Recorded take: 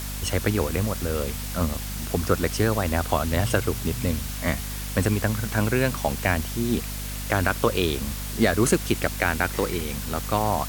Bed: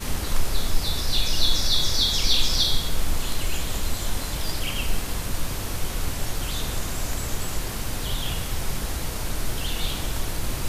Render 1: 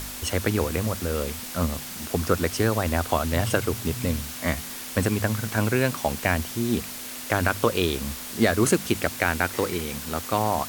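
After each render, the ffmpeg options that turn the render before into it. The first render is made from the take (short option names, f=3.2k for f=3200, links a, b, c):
-af "bandreject=f=50:t=h:w=4,bandreject=f=100:t=h:w=4,bandreject=f=150:t=h:w=4,bandreject=f=200:t=h:w=4"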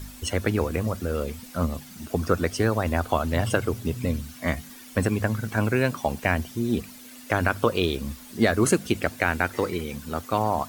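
-af "afftdn=nr=12:nf=-36"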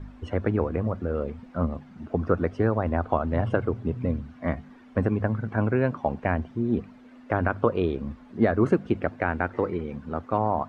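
-af "lowpass=1.3k,equalizer=f=66:t=o:w=0.4:g=-4.5"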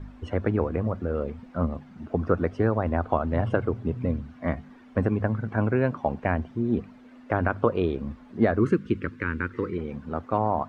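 -filter_complex "[0:a]asettb=1/sr,asplit=3[a][b][c];[a]atrim=end=8.594[d];[b]atrim=start=8.59:end=9.78,asetpts=PTS-STARTPTS,afade=t=in:d=0.004:c=qsin,afade=t=out:st=1.186:d=0.004:c=qsin,asuperstop=centerf=710:order=4:qfactor=1[e];[c]atrim=start=9.776[f];[d][e]acrossfade=d=0.004:c1=hsin:c2=qsin[g];[g][f]acrossfade=d=0.004:c1=qsin:c2=hsin"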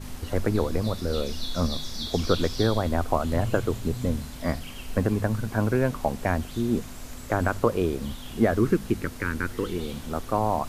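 -filter_complex "[1:a]volume=-12.5dB[a];[0:a][a]amix=inputs=2:normalize=0"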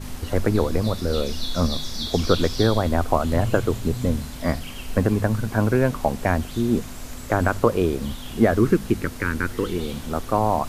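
-af "volume=4dB"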